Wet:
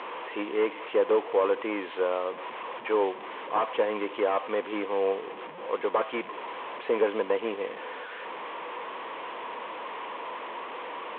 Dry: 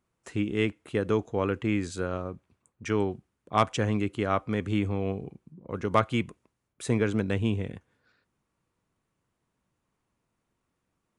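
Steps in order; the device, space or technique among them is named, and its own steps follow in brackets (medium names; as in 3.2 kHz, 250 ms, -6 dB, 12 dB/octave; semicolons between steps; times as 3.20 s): digital answering machine (band-pass 310–3300 Hz; one-bit delta coder 16 kbps, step -38 dBFS; cabinet simulation 420–4300 Hz, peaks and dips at 490 Hz +7 dB, 1 kHz +10 dB, 1.4 kHz -5 dB, 3.3 kHz +4 dB); trim +4.5 dB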